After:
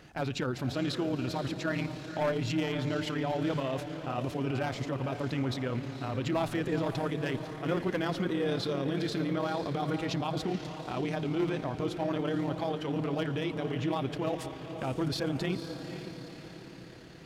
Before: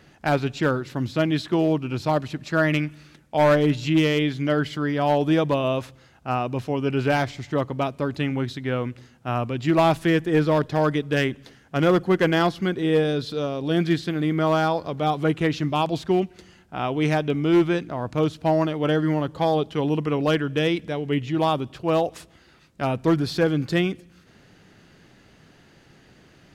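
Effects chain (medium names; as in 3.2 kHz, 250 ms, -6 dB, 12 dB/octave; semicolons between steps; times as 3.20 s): peak limiter -23 dBFS, peak gain reduction 11 dB; echo that smears into a reverb 766 ms, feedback 56%, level -9 dB; granular stretch 0.65×, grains 57 ms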